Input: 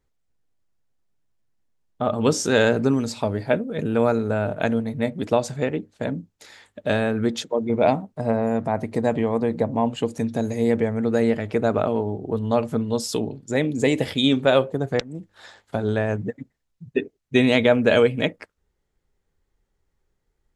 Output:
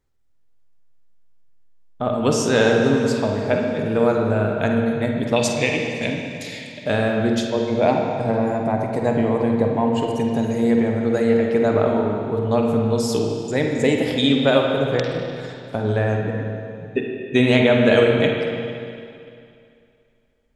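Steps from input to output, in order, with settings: 5.36–6.85 s: resonant high shelf 1.8 kHz +9 dB, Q 3; flutter echo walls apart 8.2 m, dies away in 0.26 s; on a send at -1.5 dB: reverberation RT60 2.5 s, pre-delay 50 ms

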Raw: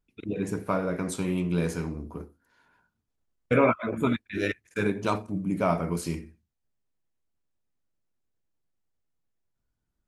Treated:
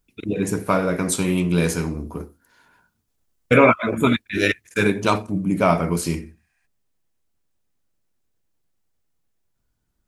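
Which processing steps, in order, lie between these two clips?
dynamic bell 2.9 kHz, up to +4 dB, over -41 dBFS, Q 0.86; 6.39–6.64 s: spectral replace 650–10000 Hz before; treble shelf 5.1 kHz +8.5 dB, from 5.04 s +3.5 dB; trim +7 dB

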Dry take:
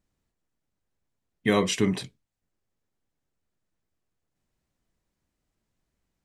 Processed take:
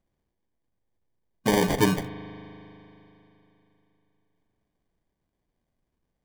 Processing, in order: 1.60–2.01 s: comb 6.8 ms, depth 97%; sample-and-hold 33×; spring tank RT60 3.3 s, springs 39 ms, chirp 50 ms, DRR 12.5 dB

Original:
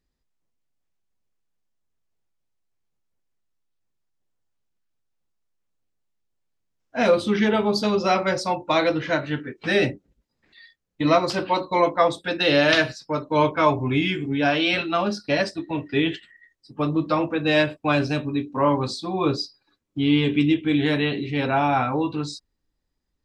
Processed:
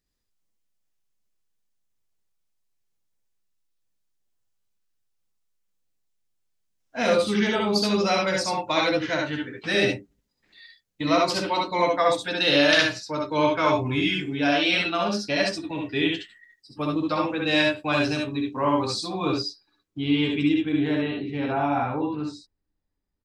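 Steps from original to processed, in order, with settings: treble shelf 2.8 kHz +8.5 dB, from 19.34 s +2.5 dB, from 20.69 s -9.5 dB; early reflections 63 ms -4 dB, 73 ms -4 dB; trim -5.5 dB

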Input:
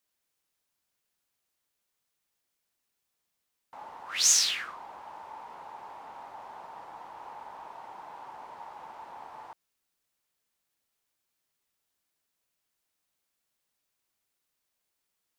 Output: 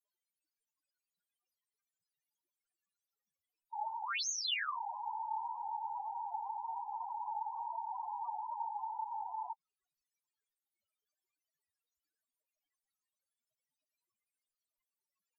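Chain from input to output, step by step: loudest bins only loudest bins 4; low-pass that closes with the level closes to 2.7 kHz, closed at -46 dBFS; trim +8.5 dB

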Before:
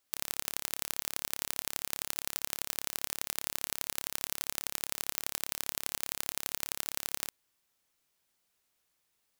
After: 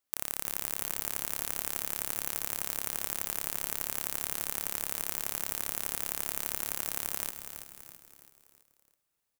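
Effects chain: peaking EQ 3.9 kHz -3 dB 2.2 oct; waveshaping leveller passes 3; frequency-shifting echo 330 ms, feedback 47%, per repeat -120 Hz, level -9 dB; Schroeder reverb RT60 2.7 s, combs from 31 ms, DRR 18.5 dB

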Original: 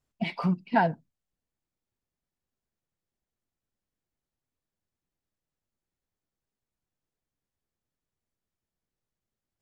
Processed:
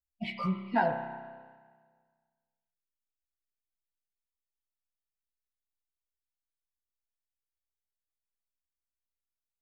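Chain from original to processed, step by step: expander on every frequency bin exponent 1.5; spring tank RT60 1.6 s, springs 31 ms, chirp 40 ms, DRR 5.5 dB; chorus voices 6, 0.37 Hz, delay 15 ms, depth 2 ms

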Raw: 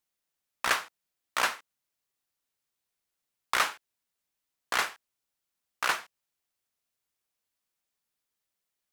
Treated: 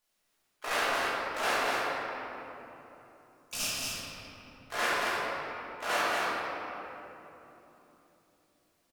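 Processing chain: time-frequency box 2.98–4.44 s, 290–4600 Hz -24 dB; hum notches 60/120/180/240/300/360/420/480/540 Hz; dynamic bell 380 Hz, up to -3 dB, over -54 dBFS, Q 3.8; reverse; compression 8:1, threshold -36 dBFS, peak gain reduction 15.5 dB; reverse; harmony voices -12 st -3 dB, +4 st -13 dB; on a send: delay 225 ms -4.5 dB; on the sum: simulated room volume 180 m³, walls hard, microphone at 1.4 m

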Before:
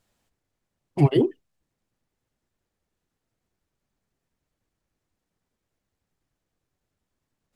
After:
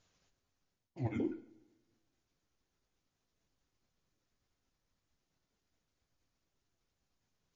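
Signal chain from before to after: sawtooth pitch modulation -7 st, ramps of 239 ms; treble shelf 4.1 kHz +7.5 dB; reverse; compression 12:1, threshold -30 dBFS, peak gain reduction 18 dB; reverse; two-slope reverb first 0.56 s, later 1.6 s, from -18 dB, DRR 8.5 dB; trim -2.5 dB; MP3 32 kbps 16 kHz

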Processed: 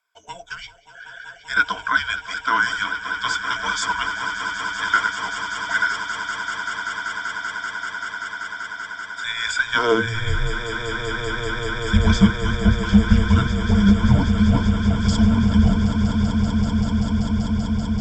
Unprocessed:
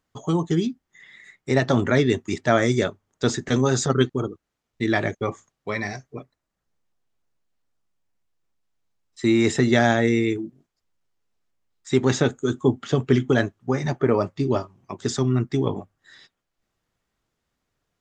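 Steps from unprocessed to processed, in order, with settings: high-pass sweep 1.7 kHz -> 140 Hz, 9.61–10.69 s; frequency shift -350 Hz; rippled EQ curve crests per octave 1.7, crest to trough 14 dB; echo with a slow build-up 193 ms, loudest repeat 8, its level -12 dB; trim -1 dB

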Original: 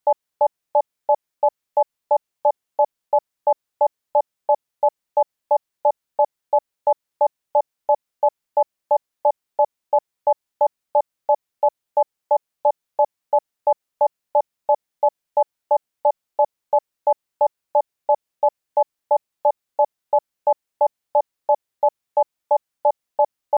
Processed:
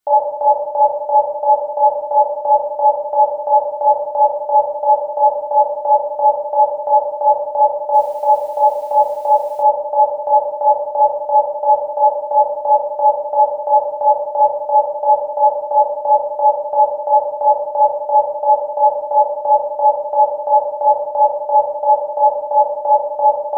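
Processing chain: simulated room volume 570 m³, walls mixed, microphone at 3.3 m; 7.93–9.62 s: added noise white -52 dBFS

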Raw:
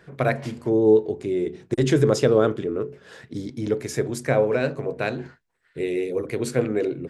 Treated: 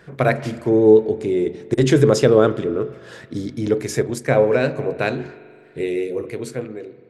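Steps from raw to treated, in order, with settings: fade out at the end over 1.56 s; spring tank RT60 2.3 s, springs 41 ms, chirp 45 ms, DRR 16 dB; 4.00–4.40 s: transient shaper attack -1 dB, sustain -6 dB; trim +4.5 dB

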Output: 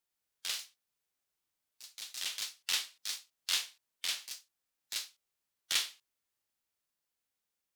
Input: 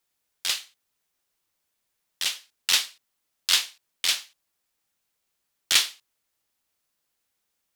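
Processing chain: ever faster or slower copies 121 ms, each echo +3 st, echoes 2, each echo -6 dB; harmonic-percussive split percussive -5 dB; trim -7.5 dB

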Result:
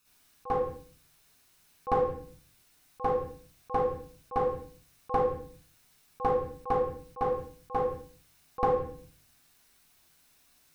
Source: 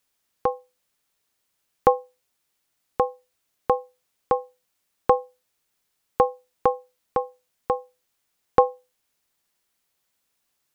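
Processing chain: reverberation RT60 0.35 s, pre-delay 48 ms, DRR -6.5 dB; slow attack 221 ms; compression 2.5:1, threshold -28 dBFS, peak gain reduction 9 dB; trim +1.5 dB

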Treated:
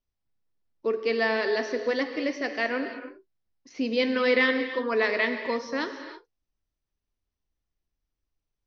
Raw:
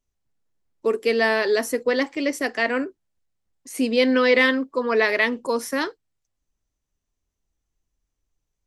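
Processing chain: steep low-pass 5.8 kHz 72 dB/octave; gated-style reverb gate 350 ms flat, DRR 7 dB; trim -5.5 dB

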